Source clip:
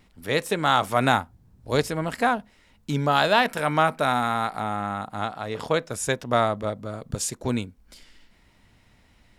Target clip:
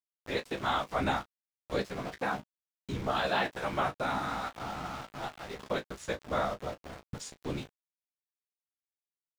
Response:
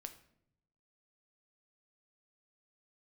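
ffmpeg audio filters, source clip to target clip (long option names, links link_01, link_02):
-filter_complex "[0:a]afftfilt=real='hypot(re,im)*cos(2*PI*random(0))':imag='hypot(re,im)*sin(2*PI*random(1))':win_size=512:overlap=0.75,aeval=exprs='val(0)*gte(abs(val(0)),0.0158)':channel_layout=same,acrossover=split=6700[link_01][link_02];[link_02]acompressor=threshold=-57dB:ratio=4:attack=1:release=60[link_03];[link_01][link_03]amix=inputs=2:normalize=0,aecho=1:1:15|35:0.473|0.211,volume=-4.5dB"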